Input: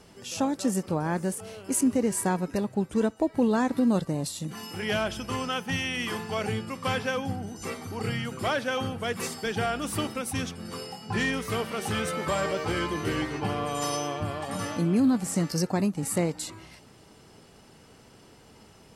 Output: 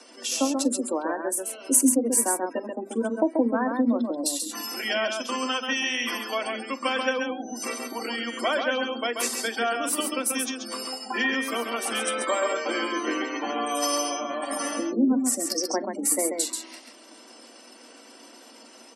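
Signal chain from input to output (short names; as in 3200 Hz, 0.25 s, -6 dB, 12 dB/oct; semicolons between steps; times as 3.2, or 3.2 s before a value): spectral gate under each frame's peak -25 dB strong; steep high-pass 230 Hz 96 dB/oct; high shelf 4400 Hz +9 dB; notches 50/100/150/200/250/300/350/400 Hz; in parallel at -1 dB: compressor, threshold -37 dBFS, peak gain reduction 19.5 dB; on the sum: transient shaper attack +3 dB, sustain -3 dB; notch comb 420 Hz; on a send: tapped delay 43/135 ms -19/-5 dB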